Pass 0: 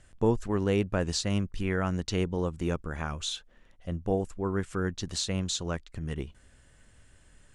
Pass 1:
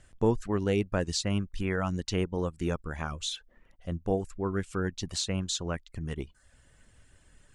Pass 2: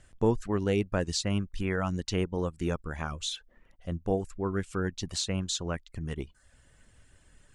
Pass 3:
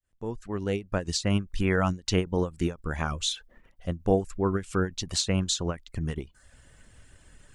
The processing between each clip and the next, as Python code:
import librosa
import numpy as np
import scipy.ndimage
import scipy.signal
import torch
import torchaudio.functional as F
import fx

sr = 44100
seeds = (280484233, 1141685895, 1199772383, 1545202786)

y1 = fx.dereverb_blind(x, sr, rt60_s=0.52)
y2 = y1
y3 = fx.fade_in_head(y2, sr, length_s=1.49)
y3 = fx.end_taper(y3, sr, db_per_s=240.0)
y3 = F.gain(torch.from_numpy(y3), 5.5).numpy()